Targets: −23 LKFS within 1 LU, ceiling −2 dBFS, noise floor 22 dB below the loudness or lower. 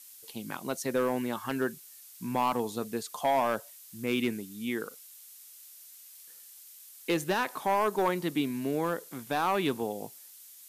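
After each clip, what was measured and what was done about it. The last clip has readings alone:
share of clipped samples 0.7%; peaks flattened at −20.0 dBFS; background noise floor −52 dBFS; target noise floor −54 dBFS; integrated loudness −31.5 LKFS; sample peak −20.0 dBFS; target loudness −23.0 LKFS
→ clipped peaks rebuilt −20 dBFS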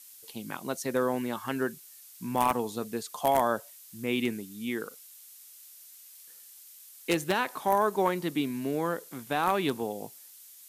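share of clipped samples 0.0%; background noise floor −52 dBFS; target noise floor −53 dBFS
→ broadband denoise 6 dB, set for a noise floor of −52 dBFS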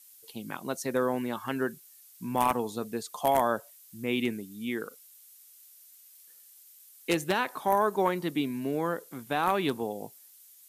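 background noise floor −55 dBFS; integrated loudness −30.0 LKFS; sample peak −11.0 dBFS; target loudness −23.0 LKFS
→ level +7 dB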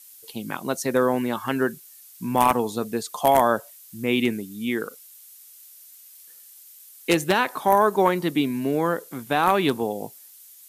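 integrated loudness −23.0 LKFS; sample peak −4.0 dBFS; background noise floor −48 dBFS

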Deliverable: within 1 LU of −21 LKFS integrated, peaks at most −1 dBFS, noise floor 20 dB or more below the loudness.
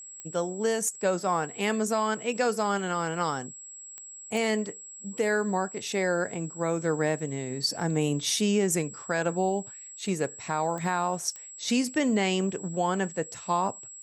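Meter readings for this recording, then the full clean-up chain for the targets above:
number of clicks 6; interfering tone 7,700 Hz; level of the tone −42 dBFS; integrated loudness −28.5 LKFS; sample peak −15.0 dBFS; target loudness −21.0 LKFS
→ click removal
notch filter 7,700 Hz, Q 30
level +7.5 dB

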